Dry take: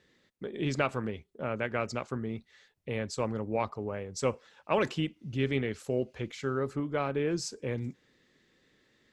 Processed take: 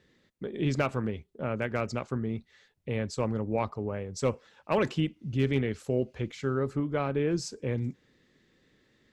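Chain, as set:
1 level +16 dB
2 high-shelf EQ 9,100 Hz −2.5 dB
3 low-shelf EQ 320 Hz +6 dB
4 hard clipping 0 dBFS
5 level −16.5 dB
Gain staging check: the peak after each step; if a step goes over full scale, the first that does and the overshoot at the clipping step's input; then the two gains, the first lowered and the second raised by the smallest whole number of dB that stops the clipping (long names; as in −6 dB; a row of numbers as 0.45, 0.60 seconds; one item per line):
+3.0, +3.0, +3.5, 0.0, −16.5 dBFS
step 1, 3.5 dB
step 1 +12 dB, step 5 −12.5 dB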